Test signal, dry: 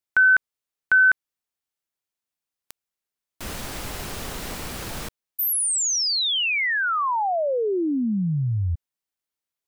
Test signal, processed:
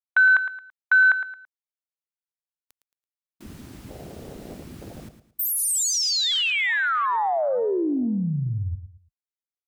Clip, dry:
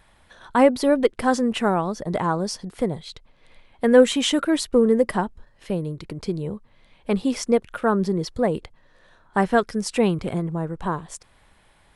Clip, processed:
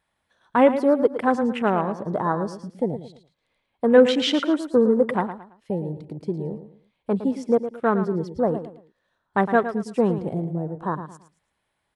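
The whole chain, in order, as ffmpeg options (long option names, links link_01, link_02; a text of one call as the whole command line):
ffmpeg -i in.wav -filter_complex "[0:a]highpass=frequency=120:poles=1,afwtdn=0.0355,asplit=2[link_01][link_02];[link_02]aecho=0:1:111|222|333:0.282|0.0874|0.0271[link_03];[link_01][link_03]amix=inputs=2:normalize=0" out.wav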